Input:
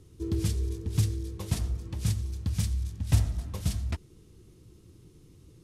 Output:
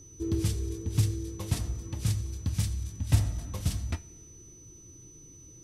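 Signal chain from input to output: two-slope reverb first 0.21 s, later 1.8 s, from -20 dB, DRR 9.5 dB; whistle 6 kHz -51 dBFS

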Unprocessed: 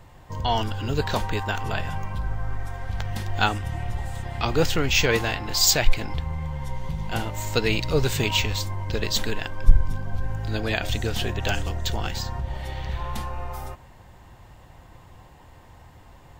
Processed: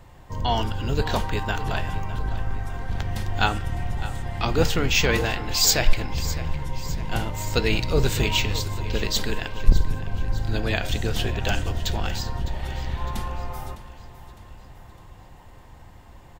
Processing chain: octave divider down 2 oct, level 0 dB; de-hum 152.7 Hz, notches 35; on a send: feedback delay 607 ms, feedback 51%, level -15 dB

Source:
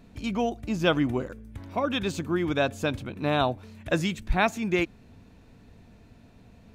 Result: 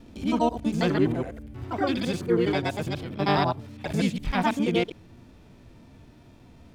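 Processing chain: time reversed locally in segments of 82 ms; harmony voices +5 st -2 dB; harmonic-percussive split percussive -11 dB; trim +3.5 dB

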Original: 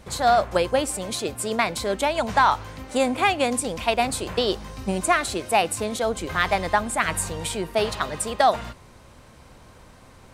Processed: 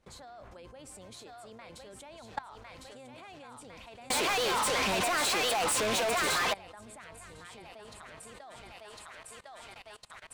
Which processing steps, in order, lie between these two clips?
octave divider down 1 oct, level -5 dB; treble shelf 11 kHz -9 dB; thinning echo 1054 ms, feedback 61%, high-pass 720 Hz, level -4 dB; compression 5:1, threshold -20 dBFS, peak gain reduction 7 dB; 4.10–6.53 s: overdrive pedal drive 33 dB, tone 7.8 kHz, clips at -10 dBFS; level held to a coarse grid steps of 20 dB; bass shelf 180 Hz -3.5 dB; trim -8.5 dB

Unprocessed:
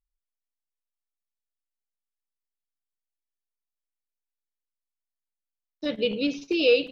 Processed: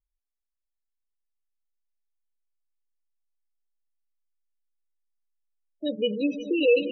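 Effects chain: tone controls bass +1 dB, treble +5 dB; echo with a slow build-up 119 ms, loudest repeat 5, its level -14 dB; spectral gate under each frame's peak -15 dB strong

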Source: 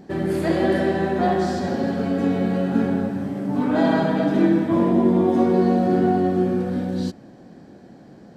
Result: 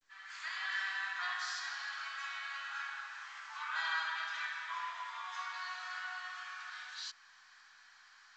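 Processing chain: fade-in on the opening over 0.84 s; steep high-pass 1.1 kHz 48 dB/octave; in parallel at +0.5 dB: compression 6:1, threshold -46 dBFS, peak gain reduction 16.5 dB; on the sum: trim -5 dB; µ-law 128 kbps 16 kHz

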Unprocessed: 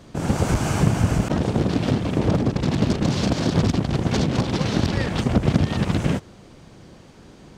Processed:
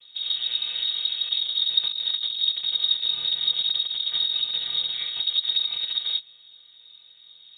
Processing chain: vocoder on a held chord minor triad, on A#3; 1.83–2.39 s: compressor with a negative ratio -23 dBFS, ratio -0.5; frequency inversion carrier 4 kHz; trim -4 dB

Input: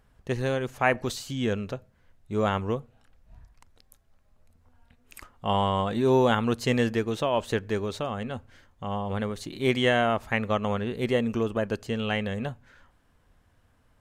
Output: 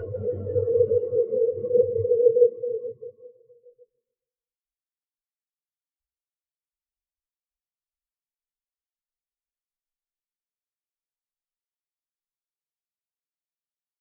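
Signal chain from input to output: in parallel at -8 dB: decimation with a swept rate 21×, swing 100% 2.2 Hz; on the sum: saturation -15 dBFS, distortion -16 dB; level rider gain up to 16 dB; tone controls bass -10 dB, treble +5 dB; integer overflow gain 4 dB; Paulstretch 8.9×, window 1.00 s, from 2.66 s; compression 6:1, threshold -17 dBFS, peak gain reduction 4.5 dB; gate with hold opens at -32 dBFS; on a send: feedback delay 155 ms, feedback 52%, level -5 dB; on the sum: spectral contrast expander 4:1

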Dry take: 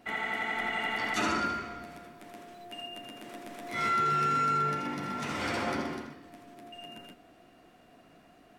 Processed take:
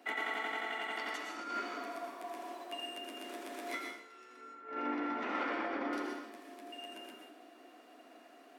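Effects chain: steep high-pass 250 Hz 48 dB/octave; 1.77–2.65 s: spectral replace 540–1200 Hz before; 4.41–5.93 s: low-pass 2.1 kHz 12 dB/octave; compressor with a negative ratio -35 dBFS, ratio -0.5; plate-style reverb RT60 0.58 s, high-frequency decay 0.85×, pre-delay 95 ms, DRR 2.5 dB; trim -4.5 dB

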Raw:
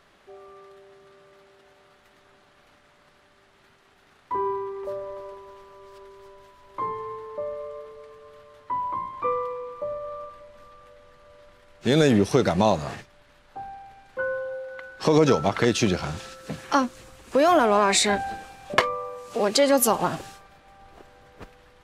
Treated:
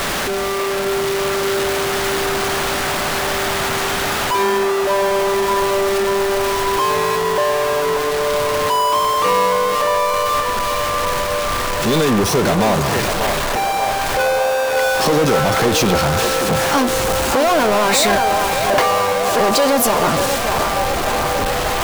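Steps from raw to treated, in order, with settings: jump at every zero crossing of -32 dBFS; power-law waveshaper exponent 0.35; band-passed feedback delay 586 ms, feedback 80%, band-pass 810 Hz, level -4 dB; trim -3.5 dB

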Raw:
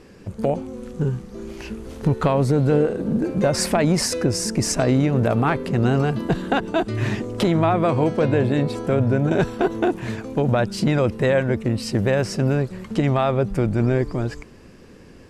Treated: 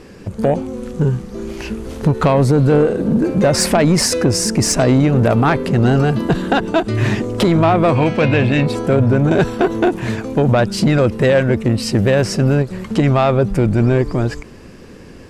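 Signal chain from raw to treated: 7.95–8.66 s: fifteen-band graphic EQ 400 Hz -5 dB, 2.5 kHz +11 dB, 10 kHz -7 dB; saturation -12.5 dBFS, distortion -18 dB; endings held to a fixed fall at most 290 dB/s; trim +7.5 dB

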